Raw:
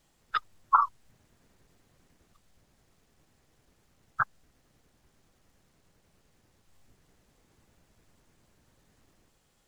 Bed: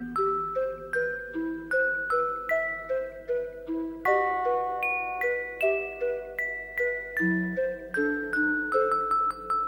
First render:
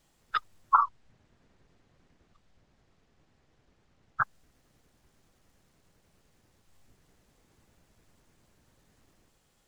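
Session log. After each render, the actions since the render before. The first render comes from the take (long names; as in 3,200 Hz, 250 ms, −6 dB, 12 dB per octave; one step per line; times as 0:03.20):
0:00.82–0:04.21: high-frequency loss of the air 100 metres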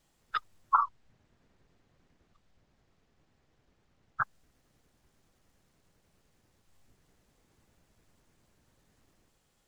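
level −3 dB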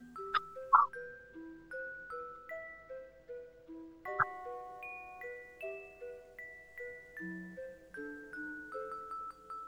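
mix in bed −18.5 dB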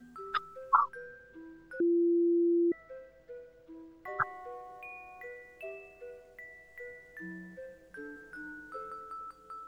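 0:01.80–0:02.72: beep over 342 Hz −23.5 dBFS
0:08.14–0:08.91: double-tracking delay 22 ms −6 dB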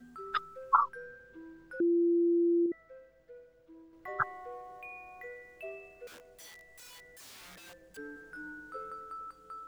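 0:02.66–0:03.93: clip gain −5 dB
0:06.07–0:07.97: wrap-around overflow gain 47 dB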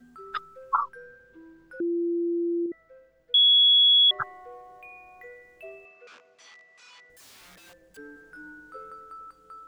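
0:03.34–0:04.11: beep over 3,360 Hz −14.5 dBFS
0:05.85–0:07.10: loudspeaker in its box 240–6,200 Hz, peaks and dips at 320 Hz −6 dB, 520 Hz −5 dB, 1,200 Hz +9 dB, 2,500 Hz +6 dB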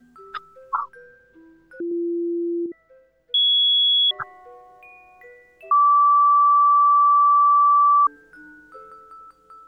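0:01.91–0:02.66: comb filter 2.3 ms, depth 64%
0:05.71–0:08.07: beep over 1,160 Hz −12 dBFS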